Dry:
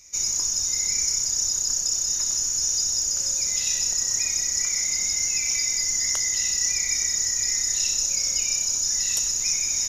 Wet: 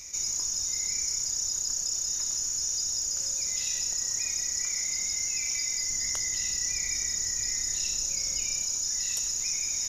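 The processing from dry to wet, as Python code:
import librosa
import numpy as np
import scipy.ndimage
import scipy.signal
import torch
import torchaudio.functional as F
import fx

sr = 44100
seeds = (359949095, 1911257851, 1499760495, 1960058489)

y = fx.low_shelf(x, sr, hz=340.0, db=5.5, at=(5.9, 8.63))
y = fx.env_flatten(y, sr, amount_pct=50)
y = y * librosa.db_to_amplitude(-7.0)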